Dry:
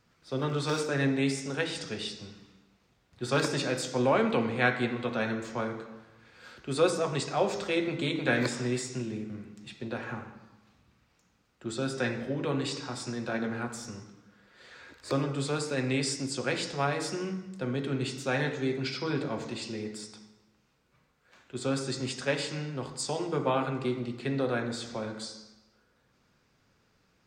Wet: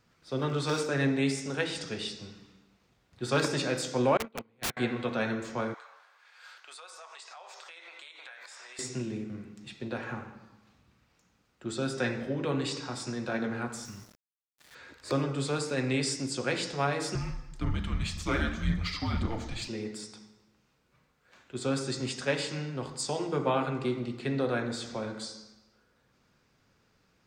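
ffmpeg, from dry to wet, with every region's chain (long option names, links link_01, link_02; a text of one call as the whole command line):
ffmpeg -i in.wav -filter_complex "[0:a]asettb=1/sr,asplit=3[link_01][link_02][link_03];[link_01]atrim=end=4.174[link_04];[link_02]atrim=start=4.17:end=4.77,asetpts=PTS-STARTPTS,afade=type=in:duration=0.004:curve=qsin,afade=type=out:start_time=0.596:duration=0.004:curve=qsin,agate=range=-34dB:threshold=-24dB:ratio=16:release=100:detection=peak,aeval=exprs='(mod(20*val(0)+1,2)-1)/20':channel_layout=same[link_05];[link_03]atrim=start=4.766[link_06];[link_04][link_05]acrossfade=duration=0.004:curve1=hsin:curve2=qsin[link_07];[link_07][link_06]acrossfade=duration=0.004:curve1=qsin:curve2=hsin,asettb=1/sr,asplit=3[link_08][link_09][link_10];[link_08]atrim=end=5.744[link_11];[link_09]atrim=start=5.74:end=8.79,asetpts=PTS-STARTPTS,afade=type=in:duration=0.004:curve=qsin,afade=type=out:start_time=3.046:duration=0.004:curve=qsin,highpass=frequency=780:width=0.5412,highpass=frequency=780:width=1.3066,acompressor=threshold=-44dB:ratio=12:attack=3.2:release=140:knee=1:detection=peak[link_12];[link_10]atrim=start=8.786[link_13];[link_11][link_12]acrossfade=duration=0.004:curve1=hsin:curve2=qsin[link_14];[link_14][link_13]acrossfade=duration=0.004:curve1=qsin:curve2=hsin,asettb=1/sr,asplit=3[link_15][link_16][link_17];[link_15]atrim=end=13.854[link_18];[link_16]atrim=start=13.85:end=14.75,asetpts=PTS-STARTPTS,afade=type=in:duration=0.004:curve=qsin,afade=type=out:start_time=0.896:duration=0.004:curve=qsin,equalizer=frequency=480:width_type=o:width=1.3:gain=-12.5,aeval=exprs='val(0)*gte(abs(val(0)),0.00316)':channel_layout=same[link_19];[link_17]atrim=start=14.746[link_20];[link_18][link_19]acrossfade=duration=0.004:curve1=hsin:curve2=qsin[link_21];[link_21][link_20]acrossfade=duration=0.004:curve1=qsin:curve2=hsin,asettb=1/sr,asplit=3[link_22][link_23][link_24];[link_22]atrim=end=17.154[link_25];[link_23]atrim=start=17.15:end=19.68,asetpts=PTS-STARTPTS,afade=type=in:duration=0.004:curve=qsin,afade=type=out:start_time=2.526:duration=0.004:curve=qsin,aphaser=in_gain=1:out_gain=1:delay=4.2:decay=0.36:speed=1.9:type=sinusoidal,afreqshift=-220[link_26];[link_24]atrim=start=19.676[link_27];[link_25][link_26]acrossfade=duration=0.004:curve1=hsin:curve2=qsin[link_28];[link_28][link_27]acrossfade=duration=0.004:curve1=qsin:curve2=hsin" out.wav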